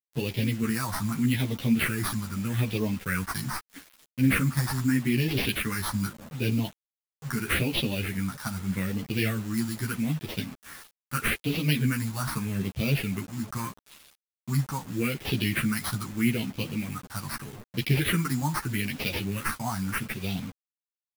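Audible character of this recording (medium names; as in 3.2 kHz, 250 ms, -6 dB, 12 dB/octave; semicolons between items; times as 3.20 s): aliases and images of a low sample rate 7.2 kHz, jitter 0%; phasing stages 4, 0.8 Hz, lowest notch 430–1400 Hz; a quantiser's noise floor 8-bit, dither none; a shimmering, thickened sound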